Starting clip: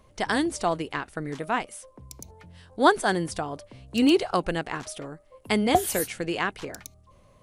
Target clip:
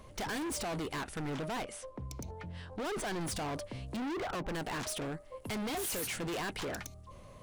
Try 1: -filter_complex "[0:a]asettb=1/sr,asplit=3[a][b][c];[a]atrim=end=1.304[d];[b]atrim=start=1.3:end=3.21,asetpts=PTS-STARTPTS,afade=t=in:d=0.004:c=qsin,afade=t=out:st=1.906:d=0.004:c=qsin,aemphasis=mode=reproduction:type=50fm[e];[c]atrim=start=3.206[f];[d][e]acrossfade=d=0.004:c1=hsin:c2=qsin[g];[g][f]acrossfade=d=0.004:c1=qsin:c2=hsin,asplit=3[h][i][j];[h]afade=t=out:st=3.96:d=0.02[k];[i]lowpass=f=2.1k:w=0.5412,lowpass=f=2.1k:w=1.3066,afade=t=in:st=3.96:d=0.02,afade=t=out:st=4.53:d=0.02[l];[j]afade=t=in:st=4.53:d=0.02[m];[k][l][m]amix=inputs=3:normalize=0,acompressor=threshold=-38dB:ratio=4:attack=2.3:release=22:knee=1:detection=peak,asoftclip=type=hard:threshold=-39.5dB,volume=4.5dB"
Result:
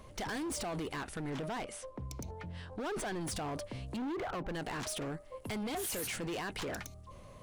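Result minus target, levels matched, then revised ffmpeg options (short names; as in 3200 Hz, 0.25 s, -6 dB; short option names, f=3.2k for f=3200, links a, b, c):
compressor: peak gain reduction +8 dB
-filter_complex "[0:a]asettb=1/sr,asplit=3[a][b][c];[a]atrim=end=1.304[d];[b]atrim=start=1.3:end=3.21,asetpts=PTS-STARTPTS,afade=t=in:d=0.004:c=qsin,afade=t=out:st=1.906:d=0.004:c=qsin,aemphasis=mode=reproduction:type=50fm[e];[c]atrim=start=3.206[f];[d][e]acrossfade=d=0.004:c1=hsin:c2=qsin[g];[g][f]acrossfade=d=0.004:c1=qsin:c2=hsin,asplit=3[h][i][j];[h]afade=t=out:st=3.96:d=0.02[k];[i]lowpass=f=2.1k:w=0.5412,lowpass=f=2.1k:w=1.3066,afade=t=in:st=3.96:d=0.02,afade=t=out:st=4.53:d=0.02[l];[j]afade=t=in:st=4.53:d=0.02[m];[k][l][m]amix=inputs=3:normalize=0,acompressor=threshold=-27dB:ratio=4:attack=2.3:release=22:knee=1:detection=peak,asoftclip=type=hard:threshold=-39.5dB,volume=4.5dB"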